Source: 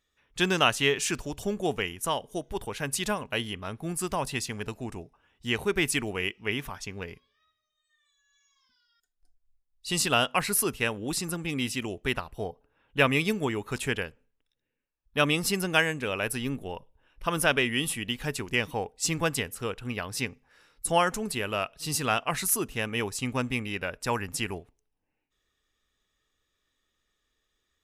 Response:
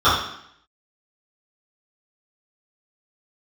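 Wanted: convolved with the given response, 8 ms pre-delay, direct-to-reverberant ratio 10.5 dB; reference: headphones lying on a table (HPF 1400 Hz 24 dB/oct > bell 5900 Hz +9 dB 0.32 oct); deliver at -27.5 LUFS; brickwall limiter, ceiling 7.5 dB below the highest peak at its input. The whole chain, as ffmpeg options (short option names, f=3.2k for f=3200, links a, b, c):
-filter_complex "[0:a]alimiter=limit=-15dB:level=0:latency=1,asplit=2[a][b];[1:a]atrim=start_sample=2205,adelay=8[c];[b][c]afir=irnorm=-1:irlink=0,volume=-35.5dB[d];[a][d]amix=inputs=2:normalize=0,highpass=f=1.4k:w=0.5412,highpass=f=1.4k:w=1.3066,equalizer=f=5.9k:t=o:w=0.32:g=9,volume=3.5dB"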